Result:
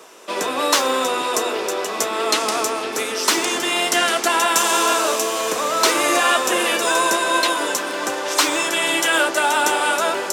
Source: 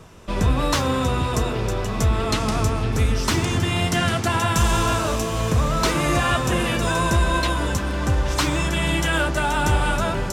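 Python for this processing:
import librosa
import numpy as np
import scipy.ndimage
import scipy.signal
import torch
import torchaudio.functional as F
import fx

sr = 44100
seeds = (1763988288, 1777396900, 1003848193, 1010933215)

y = scipy.signal.sosfilt(scipy.signal.butter(4, 340.0, 'highpass', fs=sr, output='sos'), x)
y = fx.high_shelf(y, sr, hz=4900.0, db=6.0)
y = F.gain(torch.from_numpy(y), 4.5).numpy()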